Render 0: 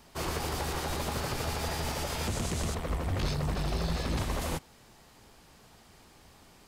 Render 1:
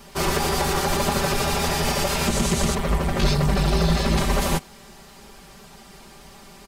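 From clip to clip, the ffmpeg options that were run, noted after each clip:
ffmpeg -i in.wav -af "aecho=1:1:5.1:0.96,volume=8.5dB" out.wav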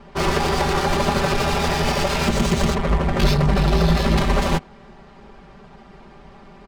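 ffmpeg -i in.wav -af "adynamicsmooth=sensitivity=4:basefreq=1900,volume=3dB" out.wav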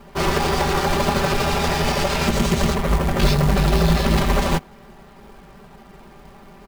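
ffmpeg -i in.wav -af "acrusher=bits=4:mode=log:mix=0:aa=0.000001" out.wav

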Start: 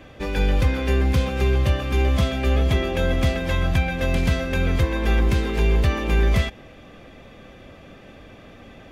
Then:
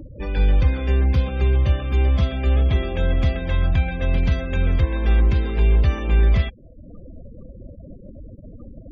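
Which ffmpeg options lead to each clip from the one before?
ffmpeg -i in.wav -af "afftfilt=real='re*gte(hypot(re,im),0.0224)':imag='im*gte(hypot(re,im),0.0224)':win_size=1024:overlap=0.75,lowshelf=frequency=87:gain=10.5,acompressor=mode=upward:threshold=-25dB:ratio=2.5,volume=-4dB" out.wav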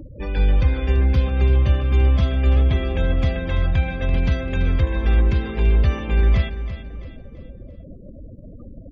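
ffmpeg -i in.wav -af "aecho=1:1:336|672|1008|1344:0.251|0.108|0.0464|0.02" out.wav

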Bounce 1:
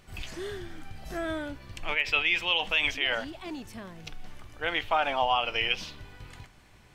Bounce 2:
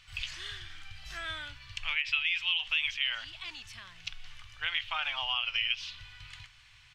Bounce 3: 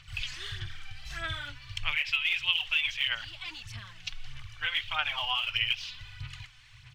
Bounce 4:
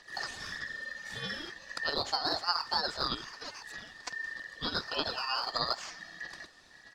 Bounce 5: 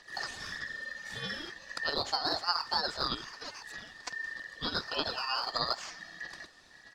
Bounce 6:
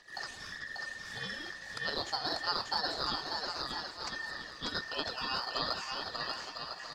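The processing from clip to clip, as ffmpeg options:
ffmpeg -i in.wav -af "firequalizer=gain_entry='entry(120,0);entry(190,-18);entry(430,-19);entry(1100,2);entry(2900,13);entry(12000,-5)':delay=0.05:min_phase=1,acompressor=threshold=-25dB:ratio=2.5,volume=-5.5dB" out.wav
ffmpeg -i in.wav -af "equalizer=frequency=120:width_type=o:width=0.79:gain=11,aphaser=in_gain=1:out_gain=1:delay=4:decay=0.54:speed=1.6:type=sinusoidal" out.wav
ffmpeg -i in.wav -af "aeval=exprs='val(0)*sin(2*PI*1800*n/s)':channel_layout=same" out.wav
ffmpeg -i in.wav -af anull out.wav
ffmpeg -i in.wav -af "aecho=1:1:590|1003|1292|1494|1636:0.631|0.398|0.251|0.158|0.1,volume=-3.5dB" out.wav

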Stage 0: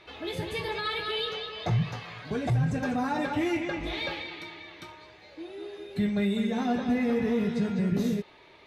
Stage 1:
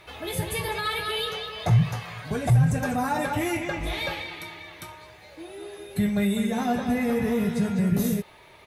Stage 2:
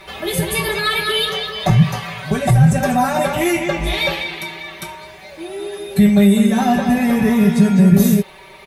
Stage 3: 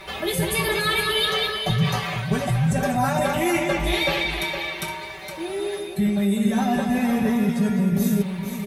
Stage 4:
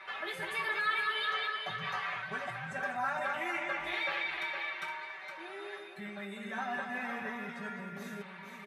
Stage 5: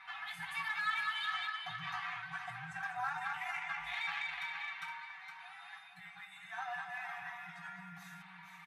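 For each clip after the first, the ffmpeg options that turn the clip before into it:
ffmpeg -i in.wav -af "firequalizer=gain_entry='entry(120,0);entry(290,-9);entry(620,-3);entry(4200,-6);entry(10000,12)':delay=0.05:min_phase=1,volume=7.5dB" out.wav
ffmpeg -i in.wav -af "aecho=1:1:5.2:0.91,volume=7.5dB" out.wav
ffmpeg -i in.wav -af "areverse,acompressor=threshold=-19dB:ratio=6,areverse,aecho=1:1:464:0.398" out.wav
ffmpeg -i in.wav -filter_complex "[0:a]bandpass=frequency=1500:width_type=q:width=1.9:csg=0,asplit=2[link_01][link_02];[link_02]alimiter=level_in=1.5dB:limit=-24dB:level=0:latency=1:release=169,volume=-1.5dB,volume=-2.5dB[link_03];[link_01][link_03]amix=inputs=2:normalize=0,volume=-7dB" out.wav
ffmpeg -i in.wav -af "aeval=exprs='0.106*(cos(1*acos(clip(val(0)/0.106,-1,1)))-cos(1*PI/2))+0.00237*(cos(7*acos(clip(val(0)/0.106,-1,1)))-cos(7*PI/2))':channel_layout=same,afftfilt=real='re*(1-between(b*sr/4096,190,660))':imag='im*(1-between(b*sr/4096,190,660))':win_size=4096:overlap=0.75,volume=-3.5dB" out.wav

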